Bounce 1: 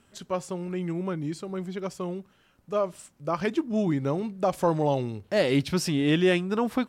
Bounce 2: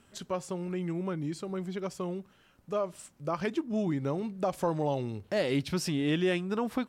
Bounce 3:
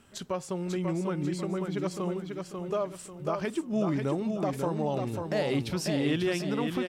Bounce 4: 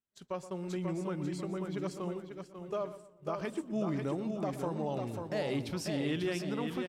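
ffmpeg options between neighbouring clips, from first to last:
-af "acompressor=threshold=-35dB:ratio=1.5"
-filter_complex "[0:a]alimiter=limit=-23.5dB:level=0:latency=1:release=247,asplit=2[a][b];[b]aecho=0:1:542|1084|1626|2168|2710:0.562|0.208|0.077|0.0285|0.0105[c];[a][c]amix=inputs=2:normalize=0,volume=2.5dB"
-filter_complex "[0:a]agate=range=-33dB:threshold=-32dB:ratio=3:detection=peak,asplit=2[a][b];[b]adelay=122,lowpass=f=1.7k:p=1,volume=-13dB,asplit=2[c][d];[d]adelay=122,lowpass=f=1.7k:p=1,volume=0.39,asplit=2[e][f];[f]adelay=122,lowpass=f=1.7k:p=1,volume=0.39,asplit=2[g][h];[h]adelay=122,lowpass=f=1.7k:p=1,volume=0.39[i];[a][c][e][g][i]amix=inputs=5:normalize=0,volume=-5.5dB"

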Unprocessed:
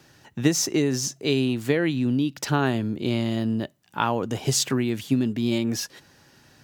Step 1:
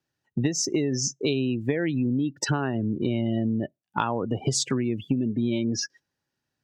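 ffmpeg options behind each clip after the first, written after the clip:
-af "afftdn=nr=36:nf=-31,acompressor=threshold=-31dB:ratio=6,volume=8.5dB"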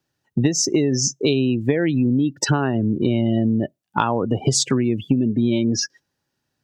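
-af "equalizer=f=2k:w=1.5:g=-2.5,volume=6.5dB"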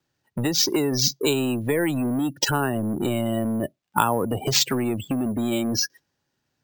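-filter_complex "[0:a]acrossover=split=430|2100[a][b][c];[a]asoftclip=type=tanh:threshold=-23.5dB[d];[d][b][c]amix=inputs=3:normalize=0,acrusher=samples=4:mix=1:aa=0.000001"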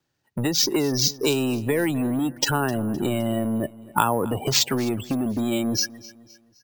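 -af "aecho=1:1:258|516|774:0.1|0.043|0.0185"

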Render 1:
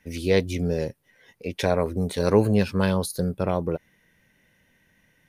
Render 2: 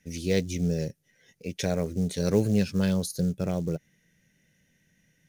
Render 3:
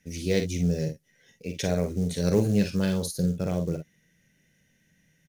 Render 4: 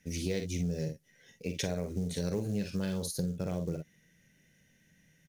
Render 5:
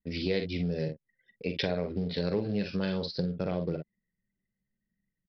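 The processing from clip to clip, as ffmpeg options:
-af "acrusher=bits=7:mode=log:mix=0:aa=0.000001,equalizer=f=160:t=o:w=0.67:g=8,equalizer=f=1k:t=o:w=0.67:g=-11,equalizer=f=6.3k:t=o:w=0.67:g=10,volume=-5.5dB"
-af "aecho=1:1:45|58:0.398|0.266"
-af "acompressor=threshold=-30dB:ratio=5"
-af "lowshelf=f=130:g=-12,anlmdn=0.00158,aresample=11025,aresample=44100,volume=6dB"

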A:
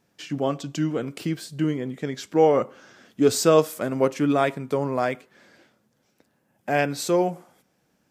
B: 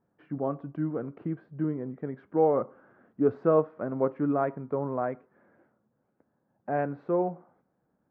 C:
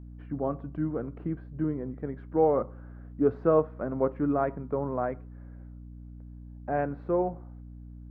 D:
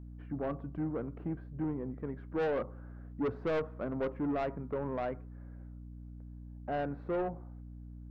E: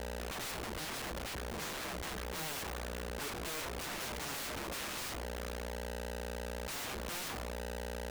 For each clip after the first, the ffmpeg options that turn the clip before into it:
-af "lowpass=f=1.4k:w=0.5412,lowpass=f=1.4k:w=1.3066,volume=-5.5dB"
-af "aeval=exprs='val(0)+0.00708*(sin(2*PI*60*n/s)+sin(2*PI*2*60*n/s)/2+sin(2*PI*3*60*n/s)/3+sin(2*PI*4*60*n/s)/4+sin(2*PI*5*60*n/s)/5)':c=same"
-af "asoftclip=type=tanh:threshold=-25.5dB,volume=-2.5dB"
-af "aeval=exprs='(mod(133*val(0)+1,2)-1)/133':c=same,volume=6.5dB"

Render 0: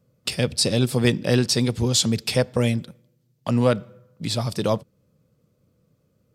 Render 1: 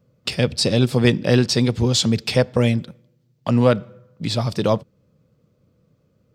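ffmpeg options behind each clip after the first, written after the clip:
-af "equalizer=f=11k:w=0.82:g=-11.5,volume=3.5dB"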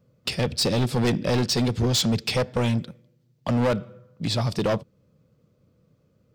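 -af "asoftclip=type=hard:threshold=-16.5dB,volume=-1.5dB"

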